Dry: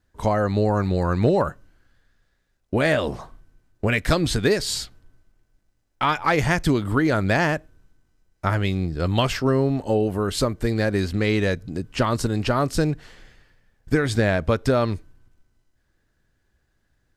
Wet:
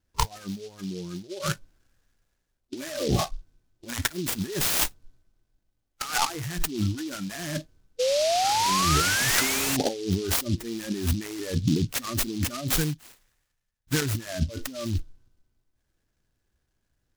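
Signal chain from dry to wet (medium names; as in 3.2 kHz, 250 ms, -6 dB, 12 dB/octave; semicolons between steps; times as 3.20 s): in parallel at -11.5 dB: integer overflow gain 22.5 dB; 12.76–14.02 s: on the sum: amplifier tone stack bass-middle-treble 5-5-5; compressor with a negative ratio -31 dBFS, ratio -1; 7.99–9.77 s: painted sound rise 490–2900 Hz -27 dBFS; dynamic bell 2.6 kHz, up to -4 dB, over -43 dBFS, Q 1.5; spectral noise reduction 21 dB; delay time shaken by noise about 4.2 kHz, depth 0.1 ms; trim +4 dB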